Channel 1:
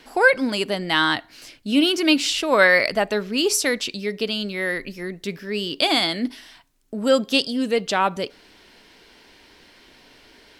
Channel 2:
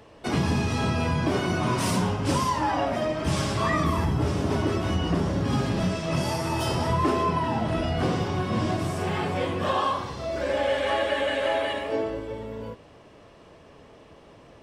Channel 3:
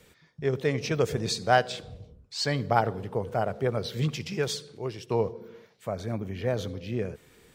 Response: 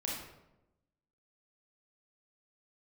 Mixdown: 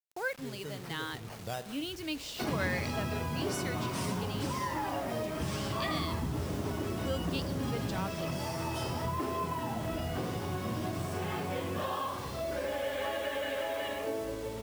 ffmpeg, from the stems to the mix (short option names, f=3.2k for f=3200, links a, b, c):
-filter_complex "[0:a]volume=-19.5dB,asplit=2[a][b];[1:a]adelay=2150,volume=-4dB,asplit=2[c][d];[d]volume=-22.5dB[e];[2:a]lowshelf=f=230:g=9,acompressor=threshold=-33dB:ratio=2,acrusher=samples=9:mix=1:aa=0.000001:lfo=1:lforange=9:lforate=0.29,volume=-7.5dB,asplit=2[f][g];[g]volume=-16.5dB[h];[b]apad=whole_len=332806[i];[f][i]sidechaincompress=threshold=-45dB:ratio=4:attack=16:release=531[j];[c][j]amix=inputs=2:normalize=0,acompressor=threshold=-33dB:ratio=5,volume=0dB[k];[3:a]atrim=start_sample=2205[l];[e][h]amix=inputs=2:normalize=0[m];[m][l]afir=irnorm=-1:irlink=0[n];[a][k][n]amix=inputs=3:normalize=0,acrusher=bits=7:mix=0:aa=0.000001"